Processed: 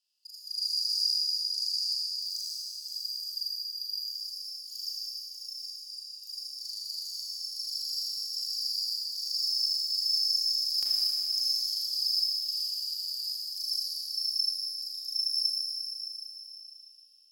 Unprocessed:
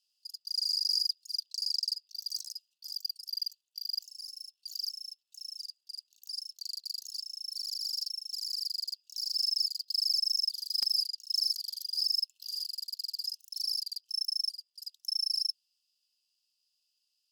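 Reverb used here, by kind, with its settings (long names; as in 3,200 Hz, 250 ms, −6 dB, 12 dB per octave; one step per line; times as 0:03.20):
four-comb reverb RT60 3.5 s, combs from 26 ms, DRR −5.5 dB
level −3.5 dB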